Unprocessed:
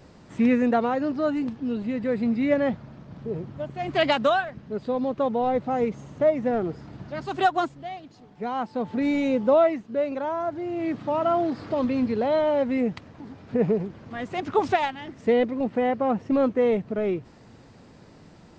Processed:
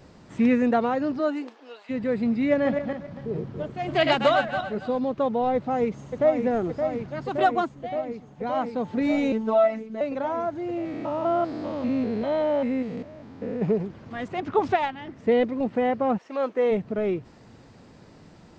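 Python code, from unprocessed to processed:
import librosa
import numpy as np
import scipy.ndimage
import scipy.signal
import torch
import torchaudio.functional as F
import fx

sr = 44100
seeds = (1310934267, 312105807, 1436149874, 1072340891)

y = fx.highpass(x, sr, hz=fx.line((1.18, 210.0), (1.89, 830.0)), slope=24, at=(1.18, 1.89), fade=0.02)
y = fx.reverse_delay_fb(y, sr, ms=140, feedback_pct=46, wet_db=-5.5, at=(2.51, 4.99))
y = fx.echo_throw(y, sr, start_s=5.55, length_s=0.87, ms=570, feedback_pct=85, wet_db=-6.5)
y = fx.high_shelf(y, sr, hz=3400.0, db=-7.0, at=(7.06, 8.47))
y = fx.robotise(y, sr, hz=220.0, at=(9.32, 10.01))
y = fx.spec_steps(y, sr, hold_ms=200, at=(10.77, 13.61), fade=0.02)
y = fx.lowpass(y, sr, hz=2900.0, slope=6, at=(14.28, 15.32))
y = fx.highpass(y, sr, hz=fx.line((16.17, 990.0), (16.7, 280.0)), slope=12, at=(16.17, 16.7), fade=0.02)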